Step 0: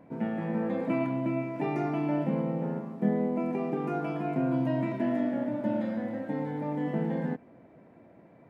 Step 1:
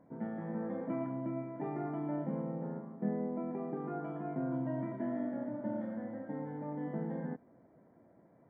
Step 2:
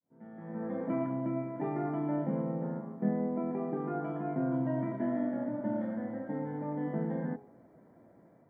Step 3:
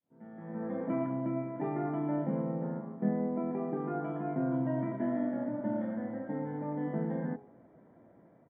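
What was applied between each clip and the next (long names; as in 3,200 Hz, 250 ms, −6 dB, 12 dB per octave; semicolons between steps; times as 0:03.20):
Savitzky-Golay smoothing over 41 samples; level −8 dB
fade in at the beginning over 0.86 s; automatic gain control gain up to 4.5 dB; hum removal 46.17 Hz, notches 24
downsampling to 8,000 Hz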